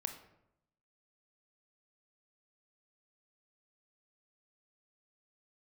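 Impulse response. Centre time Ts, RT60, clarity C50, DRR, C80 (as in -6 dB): 15 ms, 0.80 s, 9.0 dB, 6.0 dB, 12.0 dB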